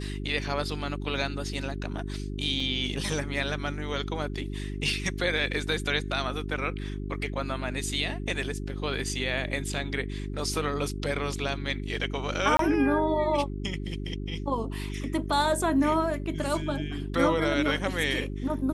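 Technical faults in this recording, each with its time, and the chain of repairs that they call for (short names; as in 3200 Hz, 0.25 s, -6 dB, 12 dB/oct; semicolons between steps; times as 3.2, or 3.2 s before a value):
hum 50 Hz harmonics 8 -34 dBFS
2.6 gap 3.4 ms
12.57–12.59 gap 23 ms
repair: de-hum 50 Hz, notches 8; interpolate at 2.6, 3.4 ms; interpolate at 12.57, 23 ms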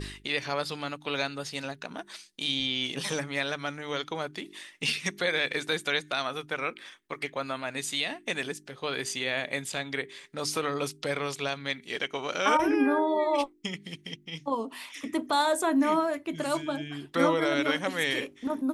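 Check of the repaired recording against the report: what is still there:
none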